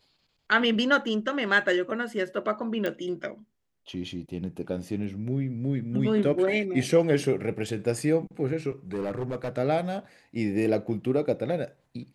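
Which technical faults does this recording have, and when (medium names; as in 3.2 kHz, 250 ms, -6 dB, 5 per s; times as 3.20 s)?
2.86 s: pop -17 dBFS
8.93–9.49 s: clipped -26 dBFS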